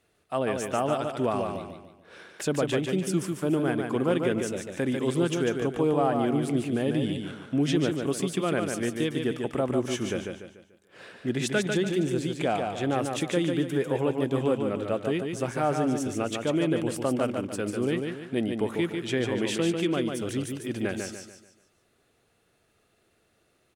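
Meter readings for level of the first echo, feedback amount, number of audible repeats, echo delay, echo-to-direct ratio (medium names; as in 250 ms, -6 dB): -5.0 dB, 39%, 4, 146 ms, -4.5 dB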